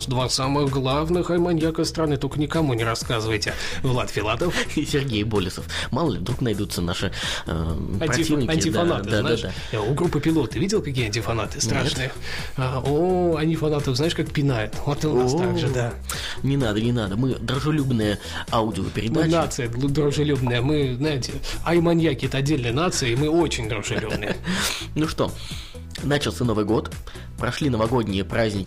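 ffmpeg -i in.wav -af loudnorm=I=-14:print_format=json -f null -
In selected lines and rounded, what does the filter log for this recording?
"input_i" : "-23.1",
"input_tp" : "-9.6",
"input_lra" : "2.5",
"input_thresh" : "-33.3",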